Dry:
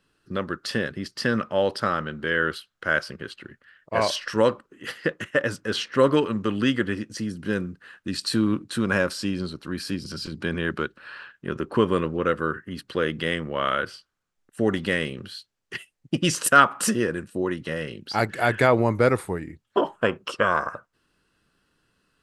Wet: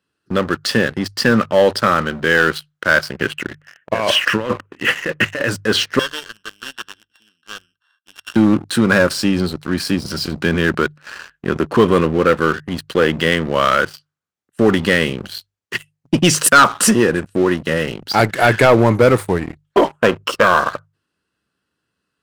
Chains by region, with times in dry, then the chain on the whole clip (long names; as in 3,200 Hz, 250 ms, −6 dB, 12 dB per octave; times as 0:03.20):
0:03.16–0:05.49: high shelf with overshoot 3,400 Hz −8 dB, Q 3 + compressor whose output falls as the input rises −28 dBFS
0:05.99–0:08.36: samples sorted by size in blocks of 16 samples + pair of resonant band-passes 2,300 Hz, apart 1.1 octaves
whole clip: high-pass filter 55 Hz 24 dB per octave; leveller curve on the samples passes 3; mains-hum notches 50/100/150 Hz